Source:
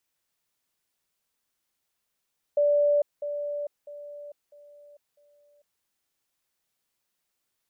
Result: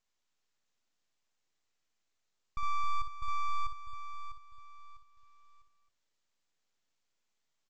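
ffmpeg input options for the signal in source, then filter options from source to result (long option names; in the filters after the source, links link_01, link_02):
-f lavfi -i "aevalsrc='pow(10,(-18.5-10*floor(t/0.65))/20)*sin(2*PI*583*t)*clip(min(mod(t,0.65),0.45-mod(t,0.65))/0.005,0,1)':duration=3.25:sample_rate=44100"
-af "alimiter=level_in=3.5dB:limit=-24dB:level=0:latency=1,volume=-3.5dB,aresample=16000,aeval=exprs='abs(val(0))':channel_layout=same,aresample=44100,aecho=1:1:58.31|268.2:0.501|0.316"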